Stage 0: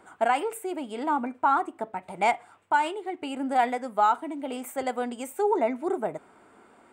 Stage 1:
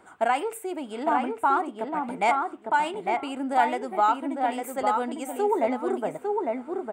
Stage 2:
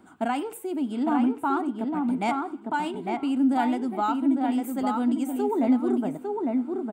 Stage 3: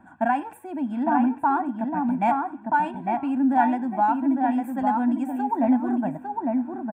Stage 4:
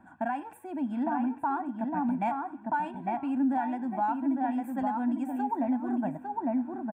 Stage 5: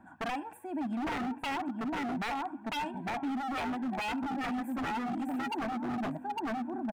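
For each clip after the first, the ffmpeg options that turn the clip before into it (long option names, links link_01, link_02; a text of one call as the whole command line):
ffmpeg -i in.wav -filter_complex "[0:a]asplit=2[link_01][link_02];[link_02]adelay=854,lowpass=frequency=2200:poles=1,volume=-3dB,asplit=2[link_03][link_04];[link_04]adelay=854,lowpass=frequency=2200:poles=1,volume=0.18,asplit=2[link_05][link_06];[link_06]adelay=854,lowpass=frequency=2200:poles=1,volume=0.18[link_07];[link_01][link_03][link_05][link_07]amix=inputs=4:normalize=0" out.wav
ffmpeg -i in.wav -filter_complex "[0:a]equalizer=frequency=250:width_type=o:width=1:gain=11,equalizer=frequency=500:width_type=o:width=1:gain=-10,equalizer=frequency=1000:width_type=o:width=1:gain=-4,equalizer=frequency=2000:width_type=o:width=1:gain=-8,equalizer=frequency=8000:width_type=o:width=1:gain=-6,asplit=4[link_01][link_02][link_03][link_04];[link_02]adelay=96,afreqshift=33,volume=-23.5dB[link_05];[link_03]adelay=192,afreqshift=66,volume=-31dB[link_06];[link_04]adelay=288,afreqshift=99,volume=-38.6dB[link_07];[link_01][link_05][link_06][link_07]amix=inputs=4:normalize=0,volume=2dB" out.wav
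ffmpeg -i in.wav -af "highshelf=frequency=2700:width_type=q:width=1.5:gain=-13,aecho=1:1:1.2:0.91" out.wav
ffmpeg -i in.wav -af "alimiter=limit=-16.5dB:level=0:latency=1:release=330,volume=-4dB" out.wav
ffmpeg -i in.wav -af "aeval=exprs='0.0355*(abs(mod(val(0)/0.0355+3,4)-2)-1)':channel_layout=same" out.wav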